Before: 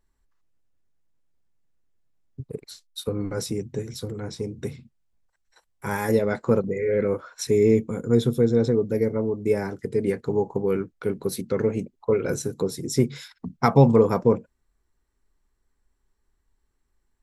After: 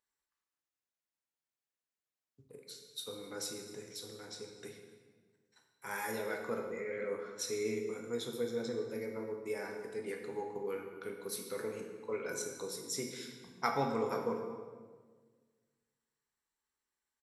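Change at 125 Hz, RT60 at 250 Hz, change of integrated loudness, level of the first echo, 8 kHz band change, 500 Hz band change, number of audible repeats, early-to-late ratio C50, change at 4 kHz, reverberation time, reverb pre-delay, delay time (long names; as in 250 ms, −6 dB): −25.5 dB, 1.9 s, −15.5 dB, −19.0 dB, −6.0 dB, −15.5 dB, 1, 4.5 dB, −6.0 dB, 1.5 s, 9 ms, 258 ms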